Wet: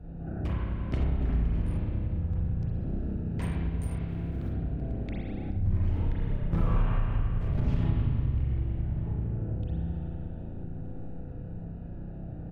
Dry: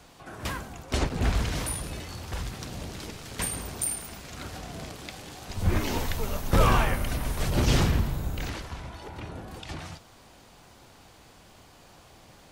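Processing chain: Wiener smoothing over 41 samples; 4.08–4.53 modulation noise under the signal 15 dB; tone controls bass +11 dB, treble -15 dB; outdoor echo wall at 210 m, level -20 dB; spring tank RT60 1.9 s, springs 30/36 ms, chirp 35 ms, DRR -7 dB; compressor 3:1, threshold -32 dBFS, peak gain reduction 23.5 dB; gain +1 dB

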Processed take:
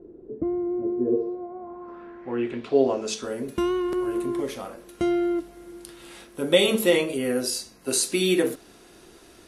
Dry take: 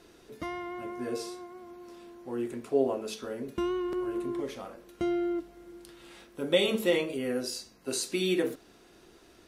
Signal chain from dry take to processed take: low-pass sweep 390 Hz -> 11000 Hz, 1.15–3.41; gain +6 dB

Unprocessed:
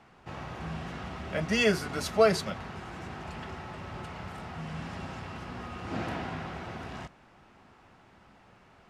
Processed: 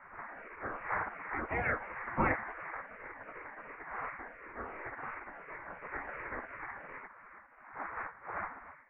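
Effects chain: moving spectral ripple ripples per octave 0.62, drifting -2.8 Hz, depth 13 dB; wind noise 500 Hz -35 dBFS; spectral gate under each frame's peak -15 dB weak; steep low-pass 2200 Hz 72 dB/oct; gain +3 dB

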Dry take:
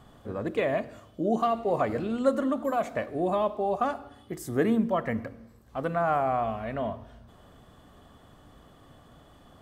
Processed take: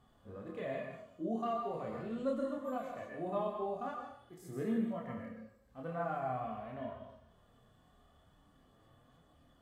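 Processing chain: plate-style reverb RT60 0.58 s, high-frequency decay 0.9×, pre-delay 0.11 s, DRR 5 dB; harmonic-percussive split percussive -12 dB; chorus voices 4, 0.41 Hz, delay 27 ms, depth 4.6 ms; gain -7 dB

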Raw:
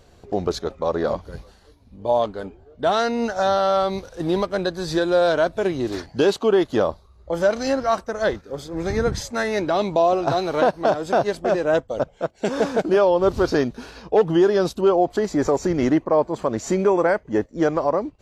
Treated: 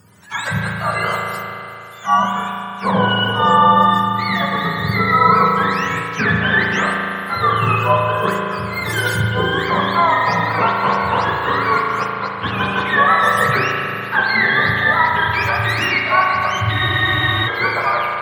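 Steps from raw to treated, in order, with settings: spectrum mirrored in octaves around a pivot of 830 Hz; spring tank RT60 2.9 s, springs 36 ms, chirp 45 ms, DRR -1 dB; spectral freeze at 16.73, 0.74 s; gain +4 dB

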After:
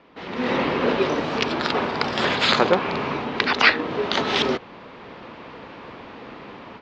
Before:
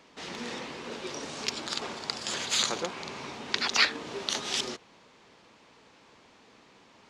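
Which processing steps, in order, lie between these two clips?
high shelf 4600 Hz -6 dB; AGC gain up to 14.5 dB; air absorption 320 m; speed mistake 24 fps film run at 25 fps; gain +6 dB

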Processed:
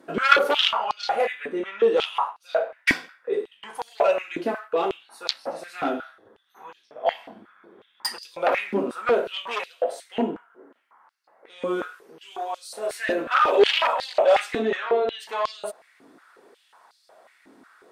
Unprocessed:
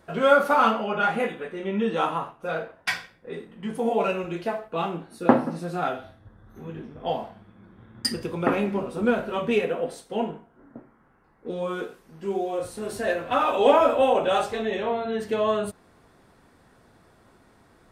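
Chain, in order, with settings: added harmonics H 7 -7 dB, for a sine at -1.5 dBFS; stepped high-pass 5.5 Hz 280–4500 Hz; gain -6 dB

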